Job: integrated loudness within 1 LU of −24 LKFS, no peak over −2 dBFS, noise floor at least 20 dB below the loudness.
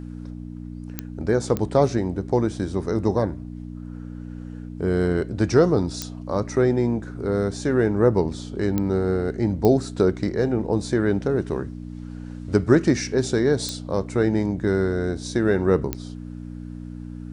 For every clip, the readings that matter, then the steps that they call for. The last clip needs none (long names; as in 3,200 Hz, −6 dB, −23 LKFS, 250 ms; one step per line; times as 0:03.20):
number of clicks 7; mains hum 60 Hz; hum harmonics up to 300 Hz; level of the hum −32 dBFS; integrated loudness −22.5 LKFS; sample peak −4.0 dBFS; target loudness −24.0 LKFS
→ click removal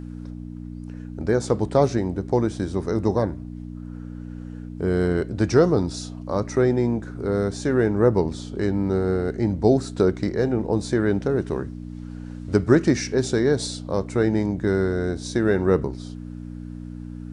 number of clicks 0; mains hum 60 Hz; hum harmonics up to 300 Hz; level of the hum −32 dBFS
→ hum removal 60 Hz, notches 5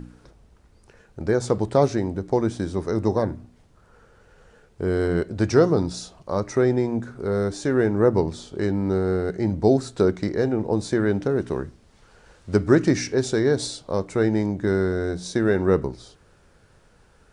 mains hum none found; integrated loudness −23.0 LKFS; sample peak −4.5 dBFS; target loudness −24.0 LKFS
→ level −1 dB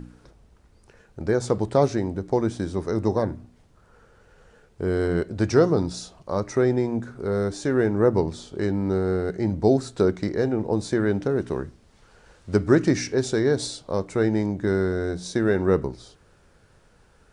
integrated loudness −24.0 LKFS; sample peak −5.5 dBFS; background noise floor −58 dBFS